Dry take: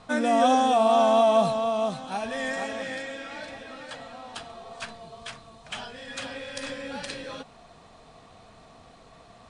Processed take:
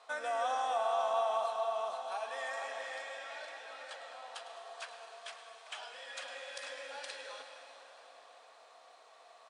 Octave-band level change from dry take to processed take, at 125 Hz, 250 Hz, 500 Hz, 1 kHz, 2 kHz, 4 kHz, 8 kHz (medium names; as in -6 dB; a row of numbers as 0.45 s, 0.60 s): under -40 dB, -36.0 dB, -12.5 dB, -10.5 dB, -8.0 dB, -9.5 dB, -10.0 dB